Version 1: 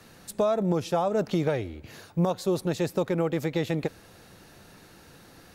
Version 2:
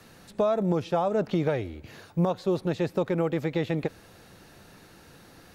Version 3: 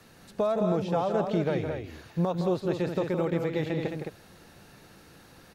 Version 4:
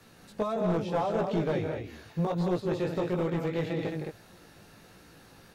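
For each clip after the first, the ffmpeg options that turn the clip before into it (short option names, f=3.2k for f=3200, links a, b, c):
-filter_complex "[0:a]acrossover=split=4100[a][b];[b]acompressor=threshold=-57dB:ratio=4:attack=1:release=60[c];[a][c]amix=inputs=2:normalize=0"
-af "aecho=1:1:163.3|215.7:0.398|0.501,volume=-2.5dB"
-af "flanger=delay=17:depth=2.2:speed=1.6,aeval=exprs='clip(val(0),-1,0.0531)':c=same,volume=2dB"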